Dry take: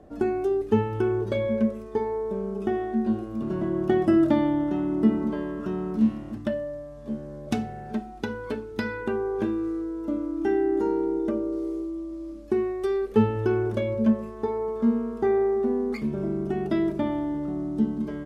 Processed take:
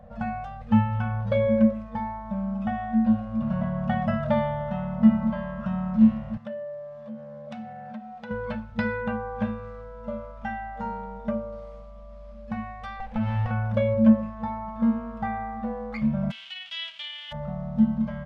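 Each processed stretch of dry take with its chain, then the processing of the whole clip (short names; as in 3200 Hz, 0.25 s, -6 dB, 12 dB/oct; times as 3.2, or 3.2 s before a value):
6.37–8.31 compressor 2.5:1, threshold -38 dBFS + HPF 220 Hz
13–13.51 minimum comb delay 0.37 ms + compressor 10:1, threshold -24 dBFS
16.3–17.31 spectral whitening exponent 0.1 + band-pass 3100 Hz, Q 6.9
whole clip: LPF 3100 Hz 12 dB/oct; FFT band-reject 230–470 Hz; low shelf 470 Hz +3 dB; gain +2.5 dB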